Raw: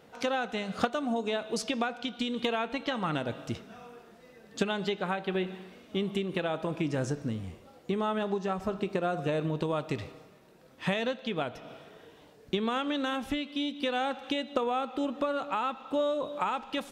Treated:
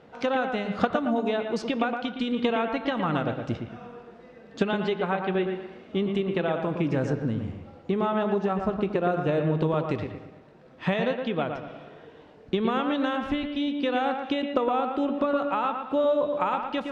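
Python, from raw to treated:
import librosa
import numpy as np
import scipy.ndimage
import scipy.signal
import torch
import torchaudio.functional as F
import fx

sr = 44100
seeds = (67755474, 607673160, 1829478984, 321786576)

p1 = scipy.signal.sosfilt(scipy.signal.butter(2, 5700.0, 'lowpass', fs=sr, output='sos'), x)
p2 = fx.high_shelf(p1, sr, hz=3200.0, db=-10.0)
p3 = p2 + fx.echo_bbd(p2, sr, ms=115, stages=2048, feedback_pct=35, wet_db=-6, dry=0)
y = p3 * 10.0 ** (4.5 / 20.0)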